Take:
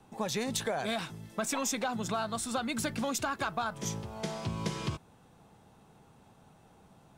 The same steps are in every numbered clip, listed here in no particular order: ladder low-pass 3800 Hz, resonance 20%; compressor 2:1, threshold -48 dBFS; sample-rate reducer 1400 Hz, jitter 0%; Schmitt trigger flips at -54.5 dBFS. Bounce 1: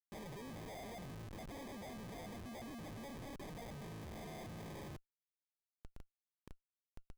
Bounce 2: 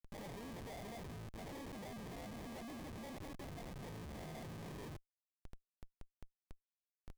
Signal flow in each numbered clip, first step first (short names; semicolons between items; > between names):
ladder low-pass > compressor > Schmitt trigger > sample-rate reducer; sample-rate reducer > ladder low-pass > compressor > Schmitt trigger